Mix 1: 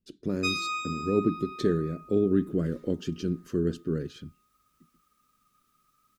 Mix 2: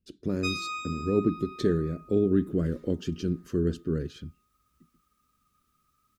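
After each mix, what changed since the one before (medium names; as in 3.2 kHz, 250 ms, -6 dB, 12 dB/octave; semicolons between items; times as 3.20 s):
background -3.0 dB; master: add peaking EQ 67 Hz +13 dB 0.61 oct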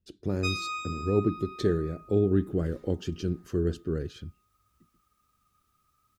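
master: add graphic EQ with 31 bands 100 Hz +7 dB, 160 Hz -4 dB, 250 Hz -6 dB, 800 Hz +10 dB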